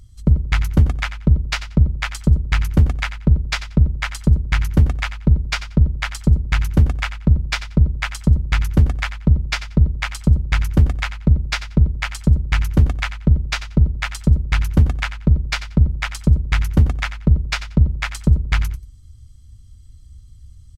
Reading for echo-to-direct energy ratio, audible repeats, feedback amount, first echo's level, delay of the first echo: -13.0 dB, 2, 19%, -13.0 dB, 91 ms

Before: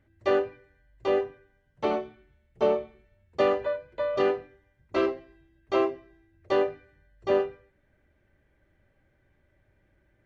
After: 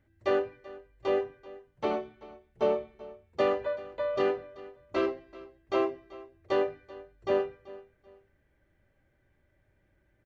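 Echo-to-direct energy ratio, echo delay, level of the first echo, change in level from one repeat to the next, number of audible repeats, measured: -18.5 dB, 384 ms, -19.0 dB, -10.5 dB, 2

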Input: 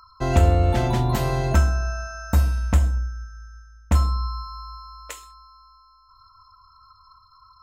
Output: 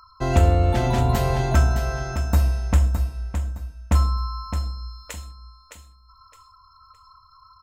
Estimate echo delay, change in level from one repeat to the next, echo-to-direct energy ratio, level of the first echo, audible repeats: 614 ms, -11.5 dB, -7.5 dB, -8.0 dB, 3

